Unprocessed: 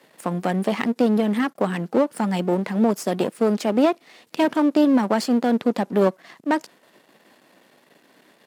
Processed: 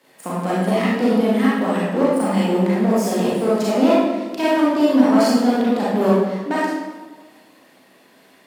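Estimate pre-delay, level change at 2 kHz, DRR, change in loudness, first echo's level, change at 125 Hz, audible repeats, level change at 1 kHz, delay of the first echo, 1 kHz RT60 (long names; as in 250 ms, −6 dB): 31 ms, +4.0 dB, −8.0 dB, +3.5 dB, no echo audible, +4.0 dB, no echo audible, +4.0 dB, no echo audible, 1.3 s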